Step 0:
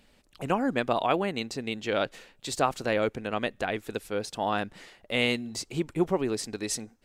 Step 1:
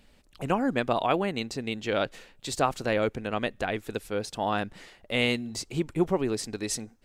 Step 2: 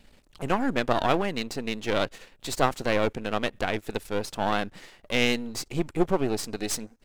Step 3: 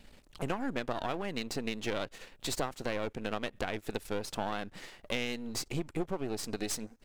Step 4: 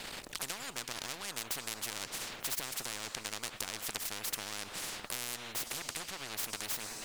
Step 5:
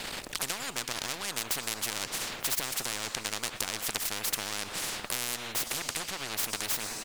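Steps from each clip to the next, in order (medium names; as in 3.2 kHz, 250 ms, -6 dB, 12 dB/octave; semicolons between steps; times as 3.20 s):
bass shelf 110 Hz +6 dB
partial rectifier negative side -12 dB; trim +4.5 dB
compression 6:1, threshold -30 dBFS, peak gain reduction 14.5 dB
on a send at -21.5 dB: reverberation RT60 3.9 s, pre-delay 29 ms; on the sum: spectrum-flattening compressor 10:1; trim +2 dB
delay 120 ms -20.5 dB; trim +6 dB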